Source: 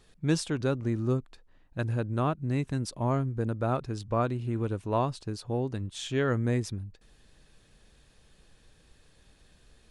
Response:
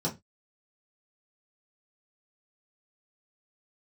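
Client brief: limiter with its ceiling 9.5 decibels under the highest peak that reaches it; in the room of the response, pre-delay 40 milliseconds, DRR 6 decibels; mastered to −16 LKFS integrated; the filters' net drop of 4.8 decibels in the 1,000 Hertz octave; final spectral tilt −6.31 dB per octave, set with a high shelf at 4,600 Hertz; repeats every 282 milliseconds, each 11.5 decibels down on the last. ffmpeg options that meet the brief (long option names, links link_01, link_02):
-filter_complex "[0:a]equalizer=frequency=1000:width_type=o:gain=-7,highshelf=frequency=4600:gain=7,alimiter=limit=-22.5dB:level=0:latency=1,aecho=1:1:282|564|846:0.266|0.0718|0.0194,asplit=2[link_01][link_02];[1:a]atrim=start_sample=2205,adelay=40[link_03];[link_02][link_03]afir=irnorm=-1:irlink=0,volume=-12.5dB[link_04];[link_01][link_04]amix=inputs=2:normalize=0,volume=14.5dB"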